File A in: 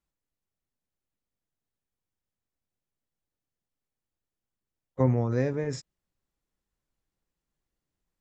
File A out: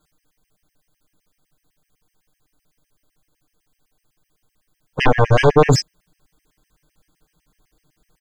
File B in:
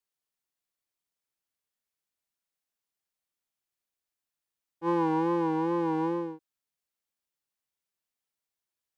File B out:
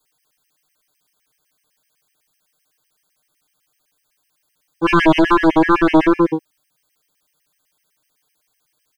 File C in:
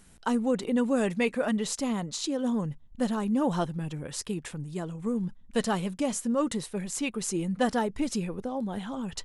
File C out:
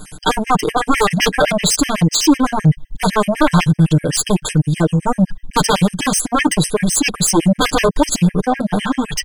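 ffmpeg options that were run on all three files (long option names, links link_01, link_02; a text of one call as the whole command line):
ffmpeg -i in.wav -af "aeval=exprs='0.316*sin(PI/2*7.08*val(0)/0.316)':channel_layout=same,aecho=1:1:6.6:0.95,afftfilt=real='re*gt(sin(2*PI*7.9*pts/sr)*(1-2*mod(floor(b*sr/1024/1600),2)),0)':imag='im*gt(sin(2*PI*7.9*pts/sr)*(1-2*mod(floor(b*sr/1024/1600),2)),0)':win_size=1024:overlap=0.75" out.wav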